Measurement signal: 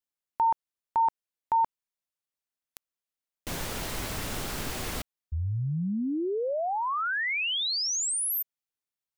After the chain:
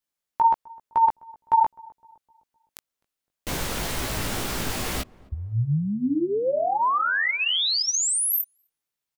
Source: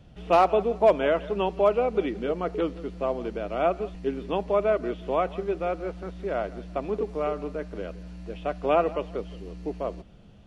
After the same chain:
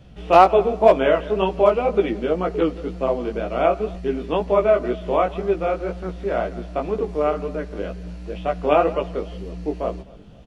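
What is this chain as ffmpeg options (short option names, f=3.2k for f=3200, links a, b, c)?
-filter_complex "[0:a]flanger=delay=15:depth=5.4:speed=2,asplit=2[a][b];[b]adelay=256,lowpass=f=860:p=1,volume=-22dB,asplit=2[c][d];[d]adelay=256,lowpass=f=860:p=1,volume=0.54,asplit=2[e][f];[f]adelay=256,lowpass=f=860:p=1,volume=0.54,asplit=2[g][h];[h]adelay=256,lowpass=f=860:p=1,volume=0.54[i];[c][e][g][i]amix=inputs=4:normalize=0[j];[a][j]amix=inputs=2:normalize=0,volume=8.5dB"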